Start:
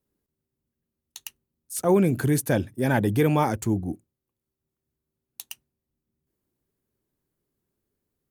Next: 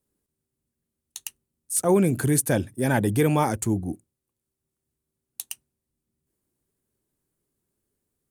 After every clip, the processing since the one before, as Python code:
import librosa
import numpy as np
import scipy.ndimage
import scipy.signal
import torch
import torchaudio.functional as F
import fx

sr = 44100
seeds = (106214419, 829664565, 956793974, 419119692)

y = fx.peak_eq(x, sr, hz=9000.0, db=9.0, octaves=0.74)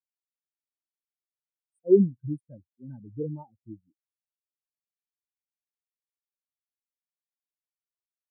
y = fx.spectral_expand(x, sr, expansion=4.0)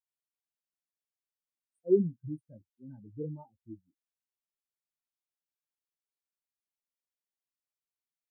y = fx.chorus_voices(x, sr, voices=6, hz=0.49, base_ms=15, depth_ms=3.8, mix_pct=30)
y = F.gain(torch.from_numpy(y), -2.5).numpy()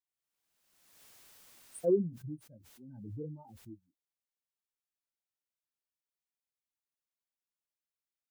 y = fx.pre_swell(x, sr, db_per_s=41.0)
y = F.gain(torch.from_numpy(y), -4.5).numpy()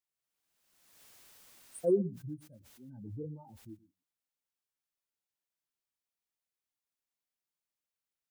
y = x + 10.0 ** (-19.0 / 20.0) * np.pad(x, (int(119 * sr / 1000.0), 0))[:len(x)]